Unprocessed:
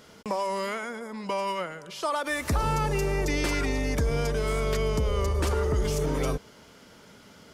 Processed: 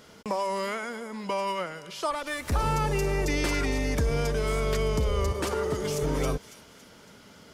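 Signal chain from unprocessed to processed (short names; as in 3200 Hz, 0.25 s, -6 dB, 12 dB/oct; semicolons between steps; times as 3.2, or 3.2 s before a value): 2.11–2.52 tube stage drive 24 dB, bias 0.75; 5.32–6.03 HPF 140 Hz 12 dB/oct; thin delay 0.279 s, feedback 44%, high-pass 2900 Hz, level -11 dB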